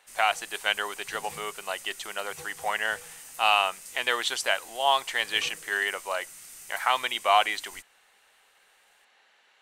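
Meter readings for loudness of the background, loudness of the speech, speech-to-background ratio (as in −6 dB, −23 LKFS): −43.0 LKFS, −27.5 LKFS, 15.5 dB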